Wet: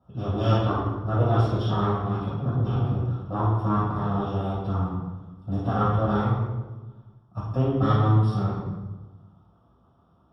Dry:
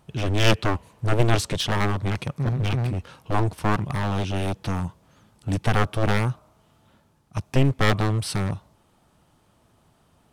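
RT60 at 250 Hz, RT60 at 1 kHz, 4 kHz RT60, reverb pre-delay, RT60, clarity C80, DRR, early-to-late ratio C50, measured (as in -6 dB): 1.6 s, 1.1 s, 0.85 s, 3 ms, 1.2 s, 2.5 dB, -9.0 dB, -1.0 dB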